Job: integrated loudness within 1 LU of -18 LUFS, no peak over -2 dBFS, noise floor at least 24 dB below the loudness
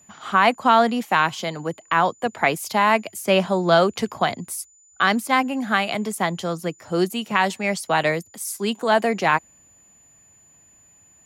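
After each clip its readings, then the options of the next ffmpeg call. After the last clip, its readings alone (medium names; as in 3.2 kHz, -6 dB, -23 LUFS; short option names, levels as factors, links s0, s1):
steady tone 7 kHz; tone level -52 dBFS; loudness -21.5 LUFS; peak level -3.5 dBFS; loudness target -18.0 LUFS
-> -af "bandreject=f=7000:w=30"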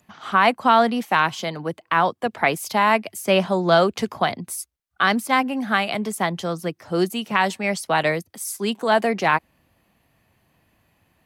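steady tone not found; loudness -21.5 LUFS; peak level -3.5 dBFS; loudness target -18.0 LUFS
-> -af "volume=1.5,alimiter=limit=0.794:level=0:latency=1"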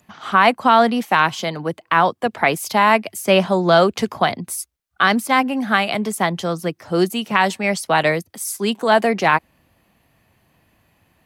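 loudness -18.0 LUFS; peak level -2.0 dBFS; noise floor -65 dBFS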